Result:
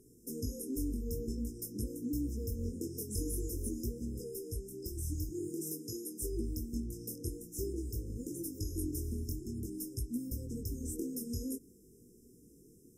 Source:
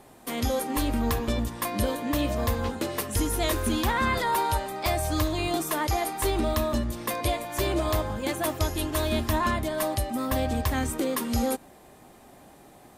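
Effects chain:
0:05.29–0:06.21: high-pass filter 130 Hz 24 dB per octave
downward compressor, threshold −26 dBFS, peak gain reduction 6 dB
chorus effect 0.49 Hz, delay 16.5 ms, depth 7.7 ms
linear-phase brick-wall band-stop 500–5,000 Hz
level −3 dB

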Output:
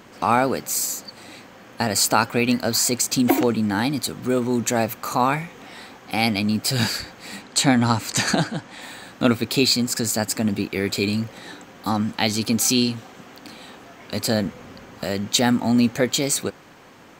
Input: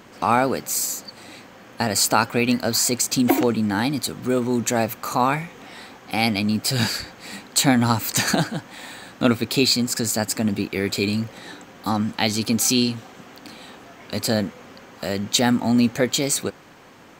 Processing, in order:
0:07.42–0:08.82: low-pass filter 9,000 Hz 12 dB per octave
0:14.45–0:15.04: low-shelf EQ 150 Hz +11.5 dB

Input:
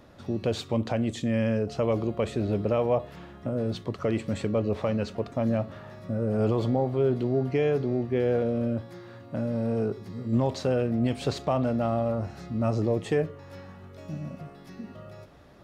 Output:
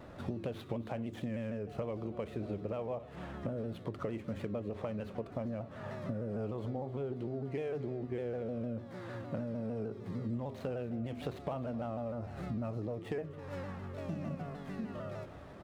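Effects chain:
running median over 9 samples
high-shelf EQ 7,100 Hz −6 dB
mains-hum notches 50/100/150/200/250/300/350/400 Hz
downward compressor 12 to 1, threshold −38 dBFS, peak gain reduction 18.5 dB
single-tap delay 263 ms −17.5 dB
pitch modulation by a square or saw wave saw down 6.6 Hz, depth 100 cents
level +3.5 dB

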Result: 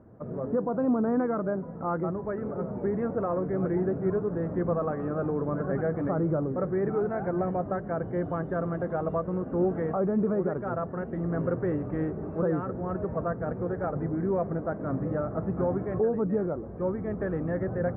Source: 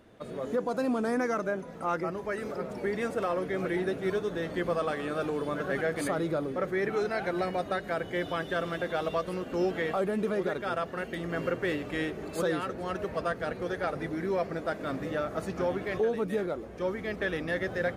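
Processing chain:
low-pass filter 1,300 Hz 24 dB per octave
parametric band 120 Hz +10 dB 1.9 octaves

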